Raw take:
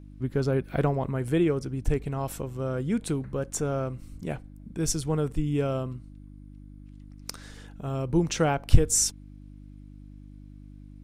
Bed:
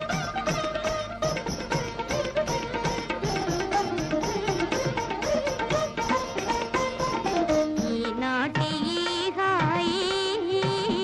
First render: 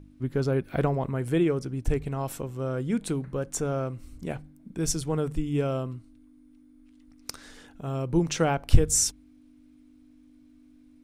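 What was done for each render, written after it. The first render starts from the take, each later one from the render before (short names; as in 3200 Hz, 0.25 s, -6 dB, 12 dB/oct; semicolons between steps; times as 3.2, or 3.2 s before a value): de-hum 50 Hz, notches 4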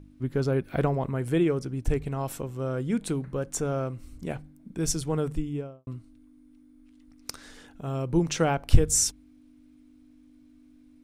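5.28–5.87 studio fade out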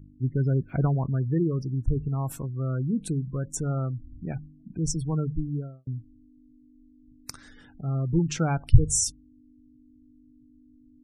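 spectral gate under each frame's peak -20 dB strong; graphic EQ 125/500/4000 Hz +6/-8/-4 dB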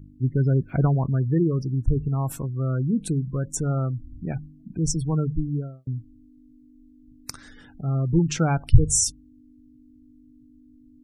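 gain +3.5 dB; limiter -2 dBFS, peak gain reduction 2.5 dB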